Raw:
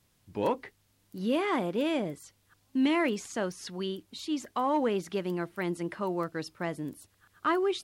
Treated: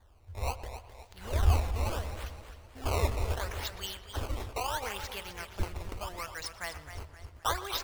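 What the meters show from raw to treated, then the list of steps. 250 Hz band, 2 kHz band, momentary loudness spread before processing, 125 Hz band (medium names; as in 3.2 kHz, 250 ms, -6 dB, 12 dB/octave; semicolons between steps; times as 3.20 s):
-17.0 dB, -3.0 dB, 11 LU, +8.5 dB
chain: amplifier tone stack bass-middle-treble 10-0-10; decimation with a swept rate 16×, swing 160% 0.73 Hz; resonant low shelf 110 Hz +12.5 dB, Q 3; filtered feedback delay 119 ms, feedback 60%, low-pass 3.8 kHz, level -15 dB; modulated delay 260 ms, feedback 44%, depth 107 cents, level -10.5 dB; trim +6 dB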